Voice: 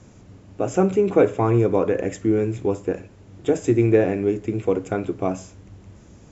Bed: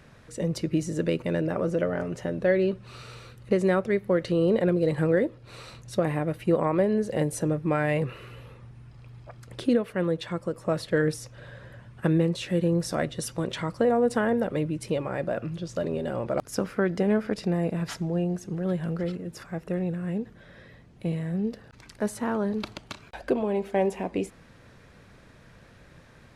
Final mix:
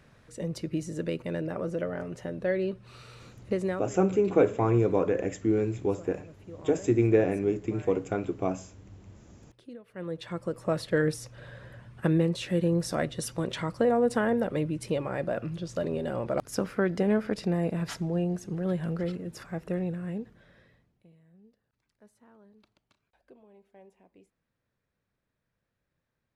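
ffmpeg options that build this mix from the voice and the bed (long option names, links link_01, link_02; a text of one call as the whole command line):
ffmpeg -i stem1.wav -i stem2.wav -filter_complex "[0:a]adelay=3200,volume=-5.5dB[link_01];[1:a]volume=15.5dB,afade=type=out:start_time=3.63:duration=0.27:silence=0.141254,afade=type=in:start_time=9.84:duration=0.69:silence=0.0891251,afade=type=out:start_time=19.7:duration=1.37:silence=0.0375837[link_02];[link_01][link_02]amix=inputs=2:normalize=0" out.wav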